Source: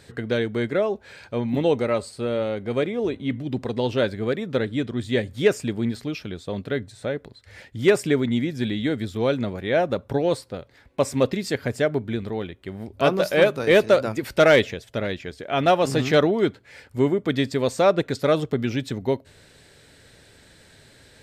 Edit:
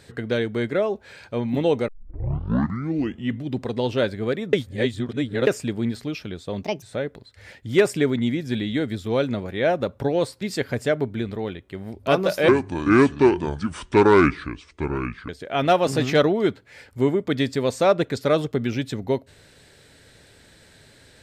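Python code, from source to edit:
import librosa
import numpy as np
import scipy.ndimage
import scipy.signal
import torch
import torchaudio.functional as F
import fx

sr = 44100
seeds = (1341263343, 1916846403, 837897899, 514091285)

y = fx.edit(x, sr, fx.tape_start(start_s=1.88, length_s=1.52),
    fx.reverse_span(start_s=4.53, length_s=0.94),
    fx.speed_span(start_s=6.63, length_s=0.29, speed=1.5),
    fx.cut(start_s=10.51, length_s=0.84),
    fx.speed_span(start_s=13.42, length_s=1.85, speed=0.66), tone=tone)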